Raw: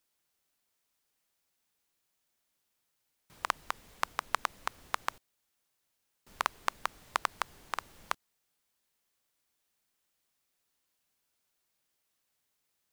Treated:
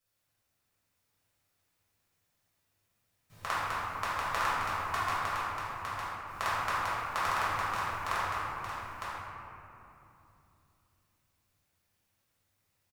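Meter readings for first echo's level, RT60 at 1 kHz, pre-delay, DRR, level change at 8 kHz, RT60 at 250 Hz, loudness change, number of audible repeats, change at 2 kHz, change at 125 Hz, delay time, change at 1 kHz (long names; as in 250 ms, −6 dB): −3.5 dB, 2.8 s, 4 ms, −13.0 dB, +1.0 dB, 4.2 s, +3.5 dB, 1, +5.0 dB, +16.5 dB, 907 ms, +5.5 dB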